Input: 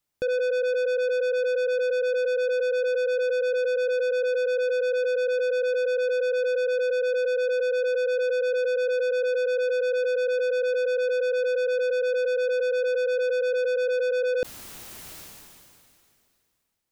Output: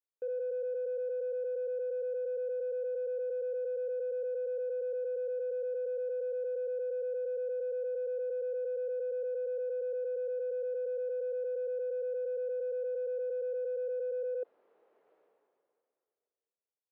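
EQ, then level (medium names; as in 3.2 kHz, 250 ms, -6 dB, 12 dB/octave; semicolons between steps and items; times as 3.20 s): ladder band-pass 510 Hz, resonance 65%; distance through air 220 m; bass shelf 330 Hz -7.5 dB; -5.0 dB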